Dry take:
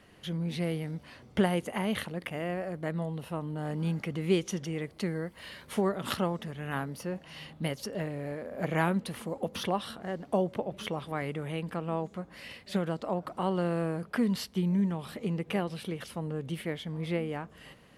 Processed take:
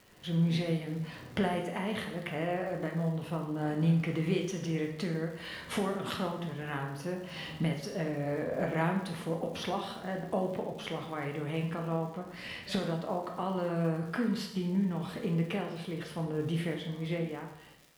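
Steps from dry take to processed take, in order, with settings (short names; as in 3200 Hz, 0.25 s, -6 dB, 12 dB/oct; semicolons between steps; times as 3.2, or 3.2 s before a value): ending faded out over 3.82 s; recorder AGC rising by 13 dB/s; high shelf 8700 Hz -10 dB; crackle 190/s -41 dBFS; plate-style reverb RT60 0.8 s, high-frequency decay 0.9×, DRR 1.5 dB; gain -5 dB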